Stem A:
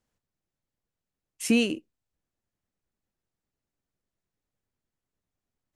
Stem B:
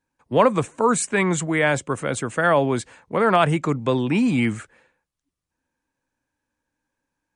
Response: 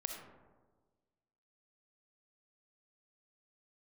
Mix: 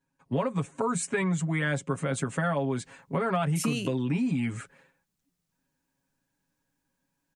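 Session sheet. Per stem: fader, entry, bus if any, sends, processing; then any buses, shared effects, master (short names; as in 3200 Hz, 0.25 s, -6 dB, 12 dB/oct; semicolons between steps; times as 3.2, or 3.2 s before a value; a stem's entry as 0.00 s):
-1.5 dB, 2.15 s, no send, high shelf 3000 Hz +11 dB
-5.5 dB, 0.00 s, no send, comb 7.3 ms, depth 98%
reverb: off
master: bell 180 Hz +12 dB 0.47 oct; compressor 6:1, threshold -25 dBFS, peak gain reduction 13 dB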